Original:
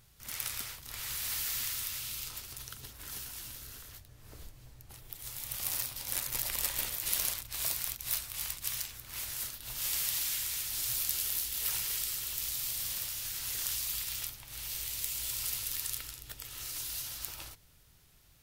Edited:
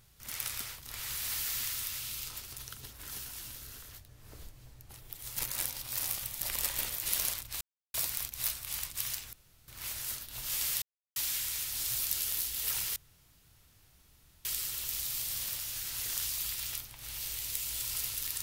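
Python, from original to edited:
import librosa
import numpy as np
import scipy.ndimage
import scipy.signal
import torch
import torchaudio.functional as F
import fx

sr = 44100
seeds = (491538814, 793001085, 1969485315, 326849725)

y = fx.edit(x, sr, fx.reverse_span(start_s=5.37, length_s=1.04),
    fx.insert_silence(at_s=7.61, length_s=0.33),
    fx.insert_room_tone(at_s=9.0, length_s=0.35),
    fx.insert_silence(at_s=10.14, length_s=0.34),
    fx.insert_room_tone(at_s=11.94, length_s=1.49), tone=tone)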